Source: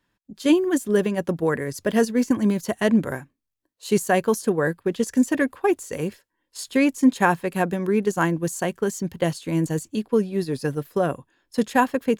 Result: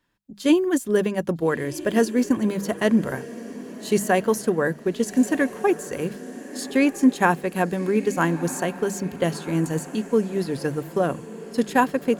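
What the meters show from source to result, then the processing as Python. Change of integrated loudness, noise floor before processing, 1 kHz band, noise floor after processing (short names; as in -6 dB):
0.0 dB, -78 dBFS, 0.0 dB, -41 dBFS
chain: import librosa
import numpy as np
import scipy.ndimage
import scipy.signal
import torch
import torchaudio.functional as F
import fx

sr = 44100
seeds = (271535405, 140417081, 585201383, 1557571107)

y = fx.hum_notches(x, sr, base_hz=50, count=4)
y = fx.echo_diffused(y, sr, ms=1298, feedback_pct=47, wet_db=-15.0)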